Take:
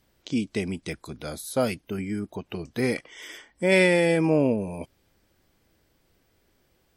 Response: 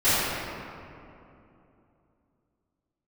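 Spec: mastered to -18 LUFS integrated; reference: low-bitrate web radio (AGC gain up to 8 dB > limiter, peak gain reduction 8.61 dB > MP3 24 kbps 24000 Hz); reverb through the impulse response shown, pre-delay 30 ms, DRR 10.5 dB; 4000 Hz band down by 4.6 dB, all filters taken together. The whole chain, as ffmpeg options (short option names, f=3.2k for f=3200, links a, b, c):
-filter_complex "[0:a]equalizer=f=4k:t=o:g=-6,asplit=2[a][b];[1:a]atrim=start_sample=2205,adelay=30[c];[b][c]afir=irnorm=-1:irlink=0,volume=-30dB[d];[a][d]amix=inputs=2:normalize=0,dynaudnorm=m=8dB,alimiter=limit=-16dB:level=0:latency=1,volume=12dB" -ar 24000 -c:a libmp3lame -b:a 24k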